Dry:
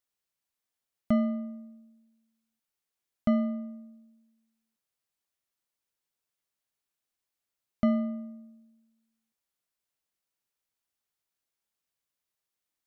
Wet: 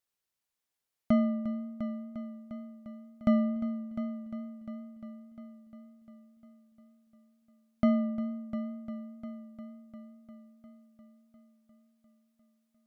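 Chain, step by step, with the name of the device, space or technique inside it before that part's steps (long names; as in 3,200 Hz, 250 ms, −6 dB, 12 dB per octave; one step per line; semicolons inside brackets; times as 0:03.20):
multi-head tape echo (echo machine with several playback heads 351 ms, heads first and second, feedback 59%, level −14 dB; tape wow and flutter 20 cents)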